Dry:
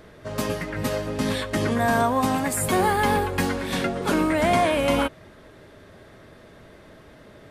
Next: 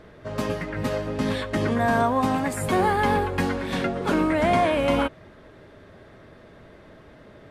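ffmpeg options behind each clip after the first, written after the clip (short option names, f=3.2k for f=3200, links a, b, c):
-af "lowpass=f=3.2k:p=1"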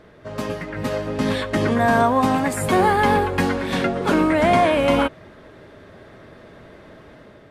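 -af "lowshelf=f=82:g=-5,dynaudnorm=f=650:g=3:m=5dB"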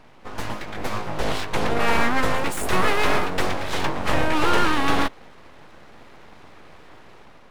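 -af "aeval=exprs='abs(val(0))':c=same"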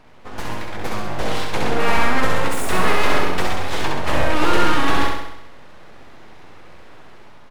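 -af "aecho=1:1:66|132|198|264|330|396|462|528:0.668|0.388|0.225|0.13|0.0756|0.0439|0.0254|0.0148"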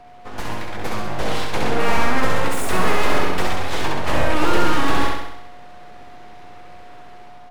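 -filter_complex "[0:a]aeval=exprs='val(0)+0.00708*sin(2*PI*720*n/s)':c=same,acrossover=split=220|1000[a][b][c];[c]volume=22.5dB,asoftclip=hard,volume=-22.5dB[d];[a][b][d]amix=inputs=3:normalize=0"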